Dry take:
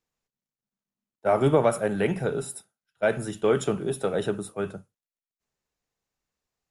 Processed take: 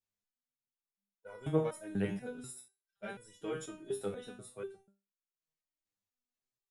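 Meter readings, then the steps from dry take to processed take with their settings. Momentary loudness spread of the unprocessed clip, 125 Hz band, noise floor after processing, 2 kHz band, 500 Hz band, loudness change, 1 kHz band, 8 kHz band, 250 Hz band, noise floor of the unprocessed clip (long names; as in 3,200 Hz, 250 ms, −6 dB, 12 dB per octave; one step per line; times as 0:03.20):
13 LU, −11.0 dB, below −85 dBFS, −15.0 dB, −15.0 dB, −13.5 dB, −18.5 dB, −11.5 dB, −10.5 dB, below −85 dBFS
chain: parametric band 820 Hz −5 dB 2.1 octaves
step-sequenced resonator 4.1 Hz 100–490 Hz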